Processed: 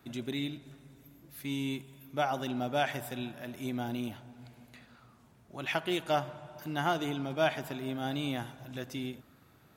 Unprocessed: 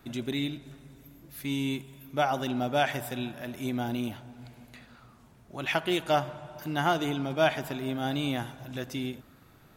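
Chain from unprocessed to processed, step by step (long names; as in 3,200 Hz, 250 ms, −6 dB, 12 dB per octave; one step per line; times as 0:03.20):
high-pass filter 59 Hz
level −4 dB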